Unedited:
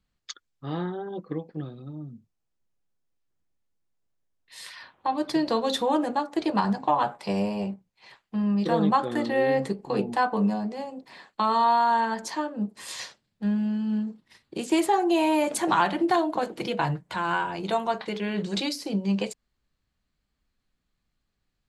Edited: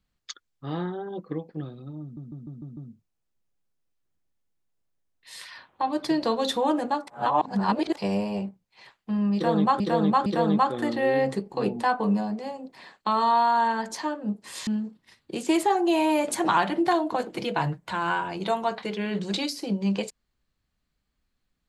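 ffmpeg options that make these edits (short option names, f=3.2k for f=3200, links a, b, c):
-filter_complex "[0:a]asplit=11[a][b][c][d][e][f][g][h][i][j][k];[a]atrim=end=2.172[l];[b]atrim=start=2.018:end=2.172[m];[c]atrim=start=2.018:end=2.172[n];[d]atrim=start=2.018:end=2.172[o];[e]atrim=start=2.018:end=2.172[p];[f]atrim=start=2.018:end=6.322[q];[g]atrim=start=6.318:end=7.222,asetpts=PTS-STARTPTS,areverse[r];[h]atrim=start=7.218:end=9.052[s];[i]atrim=start=8.588:end=9.052[t];[j]atrim=start=8.588:end=13.002[u];[k]atrim=start=13.898[v];[l][m]acrossfade=d=0.004:c1=hsin:c2=hsin[w];[w][n]acrossfade=d=0.004:c1=hsin:c2=hsin[x];[x][o]acrossfade=d=0.004:c1=hsin:c2=hsin[y];[y][p]acrossfade=d=0.004:c1=hsin:c2=hsin[z];[z][q]acrossfade=d=0.004:c1=hsin:c2=hsin[aa];[aa][r]acrossfade=d=0.004:c1=hsin:c2=hsin[ab];[ab][s]acrossfade=d=0.004:c1=hsin:c2=hsin[ac];[ac][t]acrossfade=d=0.004:c1=hsin:c2=hsin[ad];[ad][u]acrossfade=d=0.004:c1=hsin:c2=hsin[ae];[ae][v]acrossfade=d=0.004:c1=hsin:c2=hsin"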